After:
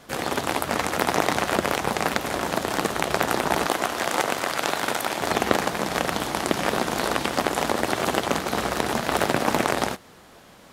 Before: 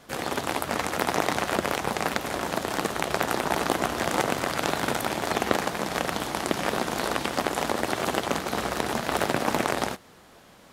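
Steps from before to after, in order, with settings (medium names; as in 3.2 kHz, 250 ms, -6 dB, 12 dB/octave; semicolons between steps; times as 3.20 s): 3.66–5.21 s: bass shelf 260 Hz -12 dB; trim +3 dB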